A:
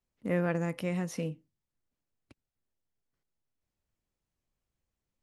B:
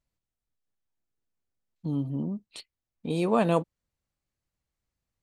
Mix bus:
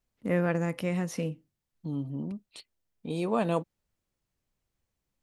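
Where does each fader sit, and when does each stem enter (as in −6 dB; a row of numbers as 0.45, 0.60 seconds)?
+2.5, −4.0 decibels; 0.00, 0.00 seconds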